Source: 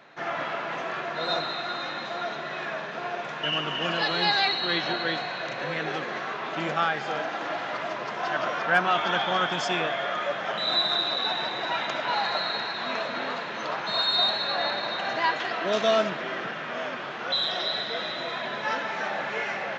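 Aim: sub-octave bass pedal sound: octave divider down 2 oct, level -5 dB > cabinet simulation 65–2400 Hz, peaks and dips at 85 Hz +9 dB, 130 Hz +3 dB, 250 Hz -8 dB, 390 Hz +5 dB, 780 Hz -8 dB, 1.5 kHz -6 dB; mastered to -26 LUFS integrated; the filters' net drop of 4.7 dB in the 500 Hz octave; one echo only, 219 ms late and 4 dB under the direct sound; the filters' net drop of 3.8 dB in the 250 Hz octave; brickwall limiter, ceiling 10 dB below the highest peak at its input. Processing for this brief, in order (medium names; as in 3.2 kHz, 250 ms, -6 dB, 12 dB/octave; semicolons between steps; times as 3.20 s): peaking EQ 250 Hz -4 dB; peaking EQ 500 Hz -4 dB; peak limiter -20 dBFS; delay 219 ms -4 dB; octave divider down 2 oct, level -5 dB; cabinet simulation 65–2400 Hz, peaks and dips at 85 Hz +9 dB, 130 Hz +3 dB, 250 Hz -8 dB, 390 Hz +5 dB, 780 Hz -8 dB, 1.5 kHz -6 dB; trim +7 dB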